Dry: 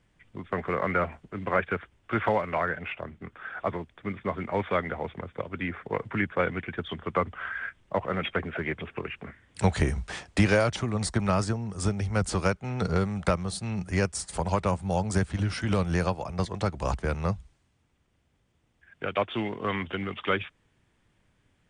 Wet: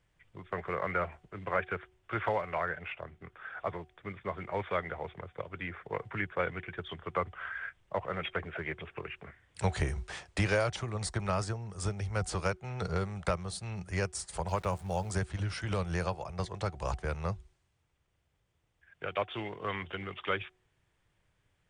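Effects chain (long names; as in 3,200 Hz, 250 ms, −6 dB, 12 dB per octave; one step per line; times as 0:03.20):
parametric band 240 Hz −11.5 dB 0.59 octaves
hum removal 370 Hz, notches 2
0:14.48–0:15.11: centre clipping without the shift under −45.5 dBFS
level −5 dB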